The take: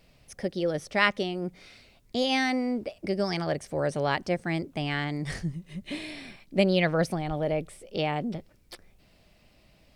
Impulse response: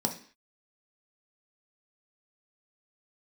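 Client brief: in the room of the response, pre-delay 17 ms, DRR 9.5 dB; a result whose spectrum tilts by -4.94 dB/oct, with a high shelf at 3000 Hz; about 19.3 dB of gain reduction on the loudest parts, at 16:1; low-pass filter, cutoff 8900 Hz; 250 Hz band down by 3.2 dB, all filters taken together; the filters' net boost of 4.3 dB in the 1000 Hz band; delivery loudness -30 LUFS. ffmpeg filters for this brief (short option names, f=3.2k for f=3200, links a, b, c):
-filter_complex "[0:a]lowpass=8.9k,equalizer=f=250:t=o:g=-5,equalizer=f=1k:t=o:g=7,highshelf=f=3k:g=-6.5,acompressor=threshold=-36dB:ratio=16,asplit=2[a][b];[1:a]atrim=start_sample=2205,adelay=17[c];[b][c]afir=irnorm=-1:irlink=0,volume=-16dB[d];[a][d]amix=inputs=2:normalize=0,volume=10.5dB"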